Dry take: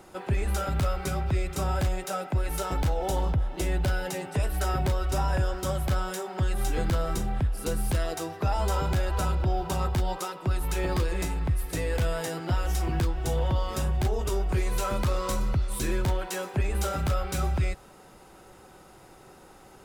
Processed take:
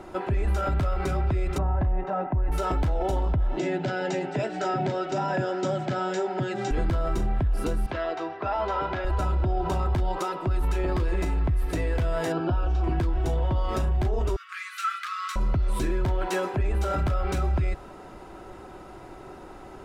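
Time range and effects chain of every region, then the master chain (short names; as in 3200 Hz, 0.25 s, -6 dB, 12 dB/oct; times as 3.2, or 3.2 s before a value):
1.58–2.52 LPF 1300 Hz + comb 1.1 ms, depth 37%
3.58–6.71 Chebyshev band-pass 130–7600 Hz, order 5 + bell 1100 Hz -13 dB 0.26 oct + short-mantissa float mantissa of 6-bit
7.86–9.05 HPF 790 Hz 6 dB/oct + air absorption 210 m
12.32–12.84 median filter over 3 samples + Butterworth band-stop 2000 Hz, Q 3.8 + air absorption 150 m
14.36–15.36 brick-wall FIR high-pass 1100 Hz + high shelf 4800 Hz -5 dB
whole clip: LPF 1700 Hz 6 dB/oct; comb 3 ms, depth 32%; limiter -27 dBFS; gain +8.5 dB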